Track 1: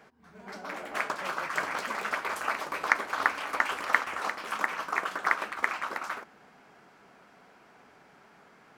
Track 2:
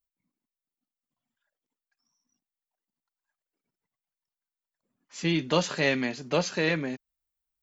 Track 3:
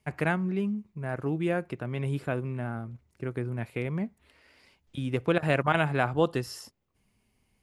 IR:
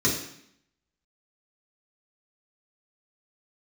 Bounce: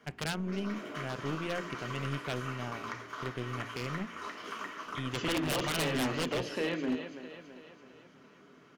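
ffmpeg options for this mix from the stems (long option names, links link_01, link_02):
-filter_complex "[0:a]acompressor=threshold=-33dB:ratio=6,volume=-12.5dB,asplit=2[link_01][link_02];[link_02]volume=-6dB[link_03];[1:a]highpass=260,highshelf=frequency=2100:gain=-11.5,acompressor=threshold=-35dB:ratio=4,volume=2.5dB,asplit=3[link_04][link_05][link_06];[link_05]volume=-21dB[link_07];[link_06]volume=-9.5dB[link_08];[2:a]bandreject=frequency=57.92:width_type=h:width=4,bandreject=frequency=115.84:width_type=h:width=4,bandreject=frequency=173.76:width_type=h:width=4,bandreject=frequency=231.68:width_type=h:width=4,bandreject=frequency=289.6:width_type=h:width=4,bandreject=frequency=347.52:width_type=h:width=4,bandreject=frequency=405.44:width_type=h:width=4,bandreject=frequency=463.36:width_type=h:width=4,aeval=exprs='0.335*(cos(1*acos(clip(val(0)/0.335,-1,1)))-cos(1*PI/2))+0.0531*(cos(2*acos(clip(val(0)/0.335,-1,1)))-cos(2*PI/2))+0.0668*(cos(3*acos(clip(val(0)/0.335,-1,1)))-cos(3*PI/2))+0.0473*(cos(4*acos(clip(val(0)/0.335,-1,1)))-cos(4*PI/2))':channel_layout=same,volume=0.5dB,asplit=2[link_09][link_10];[link_10]apad=whole_len=386990[link_11];[link_01][link_11]sidechaincompress=threshold=-36dB:ratio=8:attack=16:release=502[link_12];[3:a]atrim=start_sample=2205[link_13];[link_03][link_07]amix=inputs=2:normalize=0[link_14];[link_14][link_13]afir=irnorm=-1:irlink=0[link_15];[link_08]aecho=0:1:330|660|990|1320|1650|1980|2310|2640:1|0.52|0.27|0.141|0.0731|0.038|0.0198|0.0103[link_16];[link_12][link_04][link_09][link_15][link_16]amix=inputs=5:normalize=0,acrossover=split=5800[link_17][link_18];[link_18]acompressor=threshold=-58dB:ratio=4:attack=1:release=60[link_19];[link_17][link_19]amix=inputs=2:normalize=0,equalizer=frequency=3000:width_type=o:width=0.31:gain=13,aeval=exprs='0.0562*(abs(mod(val(0)/0.0562+3,4)-2)-1)':channel_layout=same"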